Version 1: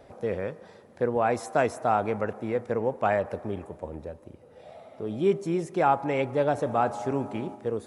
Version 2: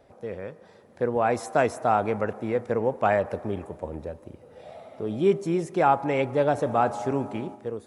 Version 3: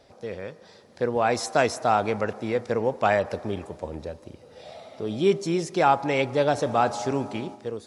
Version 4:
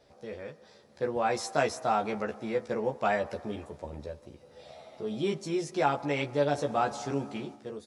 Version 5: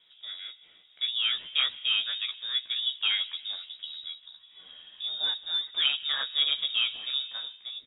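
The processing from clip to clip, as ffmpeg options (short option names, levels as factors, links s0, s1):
-af "dynaudnorm=f=350:g=5:m=2.82,volume=0.531"
-af "equalizer=f=4800:t=o:w=1.4:g=13.5"
-filter_complex "[0:a]asplit=2[s0][s1];[s1]adelay=14,volume=0.708[s2];[s0][s2]amix=inputs=2:normalize=0,volume=0.422"
-af "lowpass=f=3300:t=q:w=0.5098,lowpass=f=3300:t=q:w=0.6013,lowpass=f=3300:t=q:w=0.9,lowpass=f=3300:t=q:w=2.563,afreqshift=-3900"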